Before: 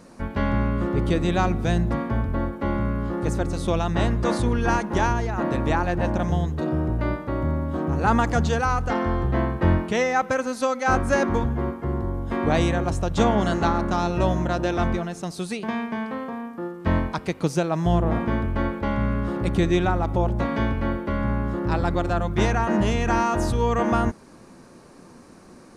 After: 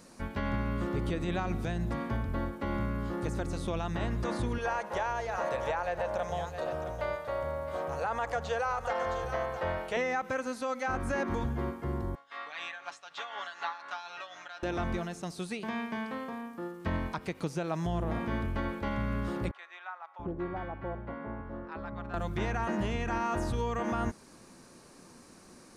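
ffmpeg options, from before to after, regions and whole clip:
ffmpeg -i in.wav -filter_complex "[0:a]asettb=1/sr,asplit=3[link_01][link_02][link_03];[link_01]atrim=end=4.584[link_04];[link_02]atrim=start=4.58:end=9.97,asetpts=PTS-STARTPTS,afade=type=in:duration=0.004:curve=qsin,afade=type=out:start_time=5.386:duration=0.004:curve=qsin,lowshelf=frequency=400:width_type=q:width=3:gain=-9.5,aecho=1:1:664:0.2,atrim=end_sample=237699[link_05];[link_03]atrim=start=9.966[link_06];[link_04][link_05]acrossfade=duration=0.004:curve1=hsin:curve2=qsin[link_07];[link_07][link_06]acrossfade=duration=0.004:curve1=qsin:curve2=hsin,asettb=1/sr,asplit=3[link_08][link_09][link_10];[link_08]atrim=end=12.154[link_11];[link_09]atrim=start=12.15:end=14.63,asetpts=PTS-STARTPTS,afade=type=in:duration=0.004:curve=qsin,afade=type=out:start_time=2.476:duration=0.004:curve=qsin,tremolo=f=4:d=0.7,asuperpass=centerf=2300:order=4:qfactor=0.65,aecho=1:1:7:0.69,atrim=end_sample=109368[link_12];[link_10]atrim=start=14.626[link_13];[link_11][link_12]acrossfade=duration=0.004:curve1=hsin:curve2=qsin[link_14];[link_14][link_13]acrossfade=duration=0.004:curve1=qsin:curve2=hsin,asettb=1/sr,asplit=3[link_15][link_16][link_17];[link_15]atrim=end=19.514[link_18];[link_16]atrim=start=19.51:end=22.14,asetpts=PTS-STARTPTS,afade=type=in:duration=0.004:curve=qsin,afade=type=out:start_time=2.626:duration=0.004:curve=qsin,lowpass=1200,lowshelf=frequency=450:gain=-11,acrossover=split=920[link_19][link_20];[link_19]adelay=680[link_21];[link_21][link_20]amix=inputs=2:normalize=0,atrim=end_sample=115983[link_22];[link_17]atrim=start=22.136[link_23];[link_18][link_22]acrossfade=duration=0.004:curve1=hsin:curve2=qsin[link_24];[link_24][link_23]acrossfade=duration=0.004:curve1=qsin:curve2=hsin,acrossover=split=2800[link_25][link_26];[link_26]acompressor=threshold=-48dB:ratio=4:attack=1:release=60[link_27];[link_25][link_27]amix=inputs=2:normalize=0,highshelf=frequency=2300:gain=9.5,alimiter=limit=-14.5dB:level=0:latency=1:release=101,volume=-8dB" out.wav

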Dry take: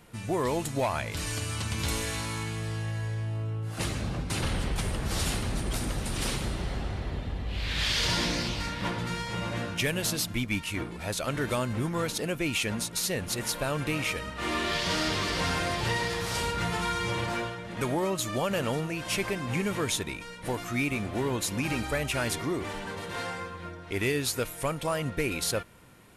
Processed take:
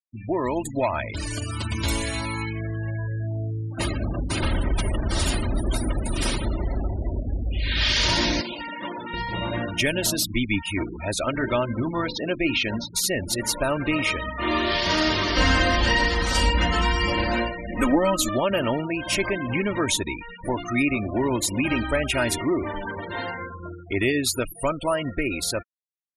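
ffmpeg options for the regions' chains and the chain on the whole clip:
ffmpeg -i in.wav -filter_complex "[0:a]asettb=1/sr,asplit=3[link_01][link_02][link_03];[link_01]atrim=end=8.414[link_04];[link_02]atrim=start=8.41:end=9.14,asetpts=PTS-STARTPTS,afade=type=in:duration=0.004:curve=qsin,afade=type=out:start_time=0.726:duration=0.004:curve=qsin,acrossover=split=270|3000[link_05][link_06][link_07];[link_06]acompressor=threshold=-35dB:ratio=6:attack=3.2:release=140:knee=2.83:detection=peak[link_08];[link_05][link_08][link_07]amix=inputs=3:normalize=0,acrossover=split=240 4100:gain=0.1 1 0.251[link_09][link_10][link_11];[link_09][link_10][link_11]amix=inputs=3:normalize=0[link_12];[link_03]atrim=start=9.136[link_13];[link_04][link_12]acrossfade=duration=0.004:curve1=hsin:curve2=qsin[link_14];[link_14][link_13]acrossfade=duration=0.004:curve1=qsin:curve2=hsin,asettb=1/sr,asplit=3[link_15][link_16][link_17];[link_15]atrim=end=11.294[link_18];[link_16]atrim=start=11.29:end=12.94,asetpts=PTS-STARTPTS,afade=type=in:duration=0.004:curve=qsin,afade=type=out:start_time=1.646:duration=0.004:curve=qsin,lowpass=frequency=5500:width=0.5412,lowpass=frequency=5500:width=1.3066,bandreject=frequency=50:width_type=h:width=6,bandreject=frequency=100:width_type=h:width=6,bandreject=frequency=150:width_type=h:width=6,bandreject=frequency=200:width_type=h:width=6,bandreject=frequency=250:width_type=h:width=6,bandreject=frequency=300:width_type=h:width=6,bandreject=frequency=350:width_type=h:width=6,bandreject=frequency=400:width_type=h:width=6,bandreject=frequency=450:width_type=h:width=6,bandreject=frequency=500:width_type=h:width=6,aeval=exprs='sgn(val(0))*max(abs(val(0))-0.0015,0)':channel_layout=same[link_19];[link_17]atrim=start=12.936[link_20];[link_18][link_19]acrossfade=duration=0.004:curve1=hsin:curve2=qsin[link_21];[link_21][link_20]acrossfade=duration=0.004:curve1=qsin:curve2=hsin,asettb=1/sr,asplit=3[link_22][link_23][link_24];[link_22]atrim=end=15.364[link_25];[link_23]atrim=start=15.36:end=18.29,asetpts=PTS-STARTPTS,afade=type=in:duration=0.004:curve=qsin,afade=type=out:start_time=2.926:duration=0.004:curve=qsin,lowshelf=frequency=72:gain=11.5,aecho=1:1:3.9:0.88,atrim=end_sample=129213[link_26];[link_24]atrim=start=18.286[link_27];[link_25][link_26]acrossfade=duration=0.004:curve1=hsin:curve2=qsin[link_28];[link_28][link_27]acrossfade=duration=0.004:curve1=qsin:curve2=hsin,afftfilt=real='re*gte(hypot(re,im),0.0224)':imag='im*gte(hypot(re,im),0.0224)':win_size=1024:overlap=0.75,aecho=1:1:3.2:0.48,dynaudnorm=framelen=150:gausssize=17:maxgain=3dB,volume=2.5dB" out.wav

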